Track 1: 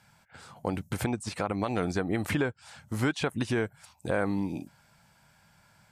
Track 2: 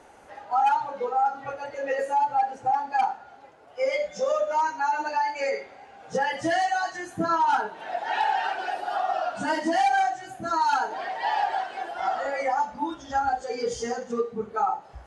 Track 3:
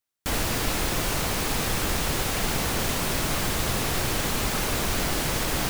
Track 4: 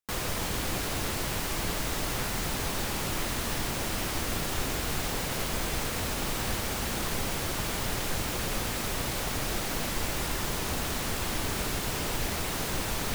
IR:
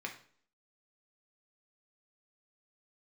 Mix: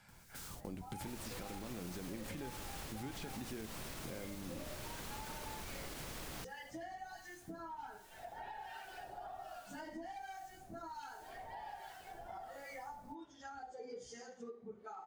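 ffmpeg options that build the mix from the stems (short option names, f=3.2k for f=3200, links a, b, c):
-filter_complex "[0:a]aeval=exprs='if(lt(val(0),0),0.708*val(0),val(0))':c=same,acrossover=split=450|3000[a][b][c];[b]acompressor=threshold=-53dB:ratio=2[d];[a][d][c]amix=inputs=3:normalize=0,volume=-3dB,asplit=3[e][f][g];[f]volume=-9dB[h];[1:a]adelay=300,volume=-14dB,asplit=2[i][j];[j]volume=-10dB[k];[2:a]adelay=750,volume=-13dB[l];[3:a]bass=f=250:g=2,treble=f=4k:g=12,acrossover=split=300[m][n];[n]acompressor=threshold=-34dB:ratio=10[o];[m][o]amix=inputs=2:normalize=0,volume=-10.5dB[p];[g]apad=whole_len=579747[q];[p][q]sidechaingate=range=-16dB:threshold=-55dB:ratio=16:detection=peak[r];[i][r]amix=inputs=2:normalize=0,acrossover=split=1300[s][t];[s]aeval=exprs='val(0)*(1-0.7/2+0.7/2*cos(2*PI*1.3*n/s))':c=same[u];[t]aeval=exprs='val(0)*(1-0.7/2-0.7/2*cos(2*PI*1.3*n/s))':c=same[v];[u][v]amix=inputs=2:normalize=0,alimiter=level_in=11dB:limit=-24dB:level=0:latency=1:release=347,volume=-11dB,volume=0dB[w];[e][l]amix=inputs=2:normalize=0,alimiter=level_in=5.5dB:limit=-24dB:level=0:latency=1:release=60,volume=-5.5dB,volume=0dB[x];[4:a]atrim=start_sample=2205[y];[h][k]amix=inputs=2:normalize=0[z];[z][y]afir=irnorm=-1:irlink=0[aa];[w][x][aa]amix=inputs=3:normalize=0,acompressor=threshold=-46dB:ratio=2.5"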